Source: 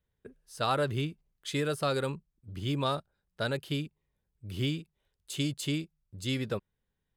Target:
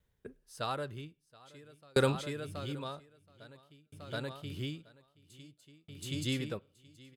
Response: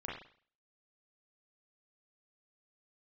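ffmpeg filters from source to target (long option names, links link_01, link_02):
-filter_complex "[0:a]aecho=1:1:725|1450|2175|2900:0.376|0.135|0.0487|0.0175,asplit=2[link_01][link_02];[1:a]atrim=start_sample=2205[link_03];[link_02][link_03]afir=irnorm=-1:irlink=0,volume=-23dB[link_04];[link_01][link_04]amix=inputs=2:normalize=0,aeval=exprs='val(0)*pow(10,-38*if(lt(mod(0.51*n/s,1),2*abs(0.51)/1000),1-mod(0.51*n/s,1)/(2*abs(0.51)/1000),(mod(0.51*n/s,1)-2*abs(0.51)/1000)/(1-2*abs(0.51)/1000))/20)':channel_layout=same,volume=6dB"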